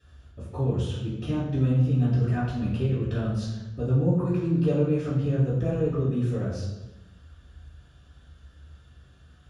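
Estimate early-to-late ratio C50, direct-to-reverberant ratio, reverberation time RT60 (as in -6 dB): 1.5 dB, -13.0 dB, 1.1 s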